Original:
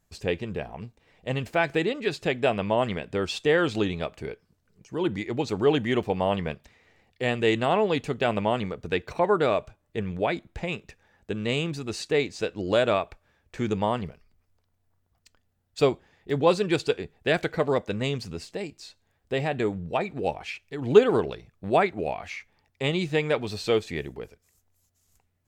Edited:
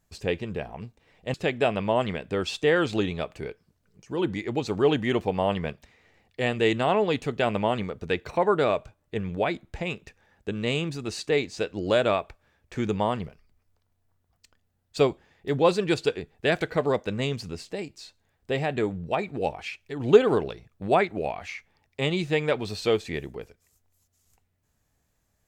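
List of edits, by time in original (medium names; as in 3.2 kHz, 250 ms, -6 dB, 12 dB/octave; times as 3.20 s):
1.34–2.16 s: delete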